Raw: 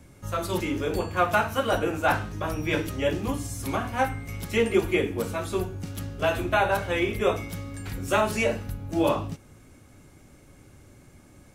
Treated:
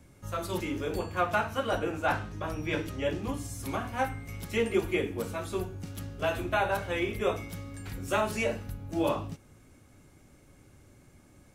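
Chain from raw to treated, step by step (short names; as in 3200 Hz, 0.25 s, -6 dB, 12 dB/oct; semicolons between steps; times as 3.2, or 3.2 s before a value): 1.21–3.37 high shelf 11000 Hz -10 dB; gain -5 dB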